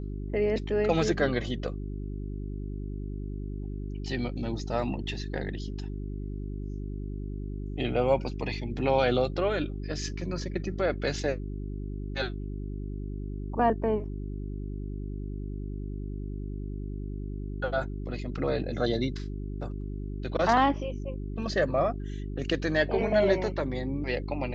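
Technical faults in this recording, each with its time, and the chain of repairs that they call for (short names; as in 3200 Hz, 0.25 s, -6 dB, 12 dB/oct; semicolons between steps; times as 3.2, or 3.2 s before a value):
hum 50 Hz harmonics 8 -35 dBFS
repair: de-hum 50 Hz, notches 8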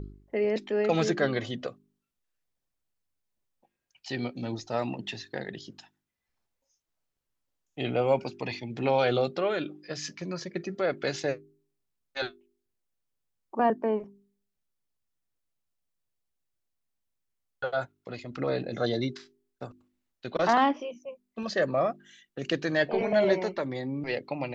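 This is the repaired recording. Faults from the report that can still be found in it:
none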